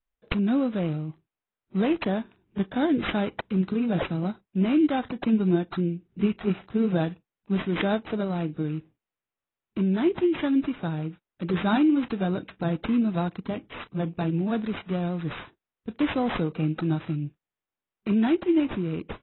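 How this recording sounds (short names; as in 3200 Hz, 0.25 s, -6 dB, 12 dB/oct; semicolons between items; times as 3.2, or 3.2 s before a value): aliases and images of a low sample rate 5200 Hz, jitter 0%; AAC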